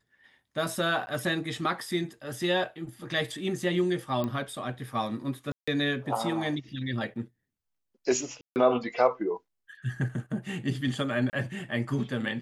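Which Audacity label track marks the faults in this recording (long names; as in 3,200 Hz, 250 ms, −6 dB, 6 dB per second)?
1.060000	1.070000	drop-out 10 ms
4.240000	4.240000	click −19 dBFS
5.520000	5.670000	drop-out 155 ms
8.410000	8.560000	drop-out 149 ms
11.300000	11.330000	drop-out 29 ms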